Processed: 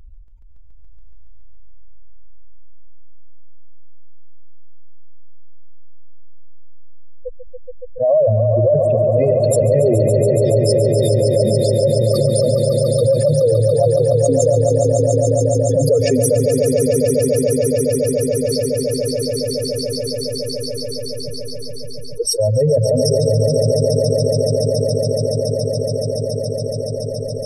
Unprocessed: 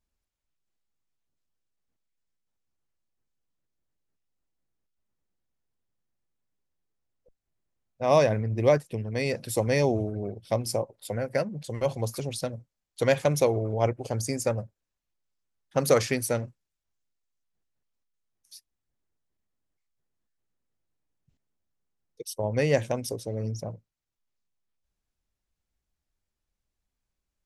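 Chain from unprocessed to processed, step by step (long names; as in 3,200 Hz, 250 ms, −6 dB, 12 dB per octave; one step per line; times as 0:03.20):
expanding power law on the bin magnitudes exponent 3.4
echo that builds up and dies away 141 ms, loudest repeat 5, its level −8 dB
envelope flattener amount 70%
level +5 dB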